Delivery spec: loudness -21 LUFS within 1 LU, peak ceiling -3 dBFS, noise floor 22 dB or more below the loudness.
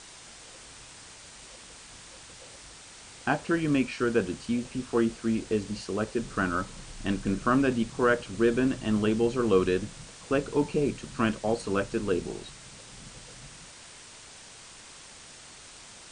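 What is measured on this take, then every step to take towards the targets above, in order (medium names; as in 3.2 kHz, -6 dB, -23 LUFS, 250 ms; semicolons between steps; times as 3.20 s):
noise floor -49 dBFS; noise floor target -50 dBFS; loudness -28.0 LUFS; peak level -10.5 dBFS; loudness target -21.0 LUFS
-> noise reduction 6 dB, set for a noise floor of -49 dBFS; trim +7 dB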